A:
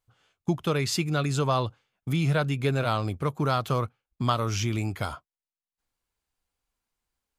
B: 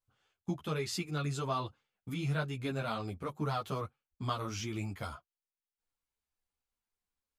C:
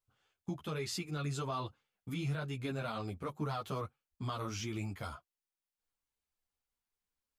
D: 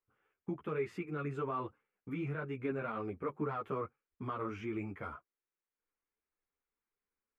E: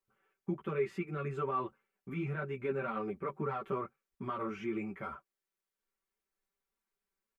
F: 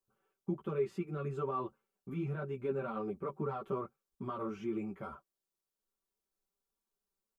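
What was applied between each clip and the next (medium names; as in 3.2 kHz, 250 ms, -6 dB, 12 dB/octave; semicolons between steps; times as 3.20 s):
three-phase chorus; trim -6 dB
peak limiter -27.5 dBFS, peak gain reduction 7 dB; trim -1 dB
FFT filter 120 Hz 0 dB, 430 Hz +12 dB, 670 Hz +2 dB, 1.2 kHz +8 dB, 2.3 kHz +6 dB, 4.2 kHz -19 dB, 12 kHz -16 dB; trim -6 dB
comb 5.2 ms, depth 72%
peaking EQ 2 kHz -12 dB 0.91 oct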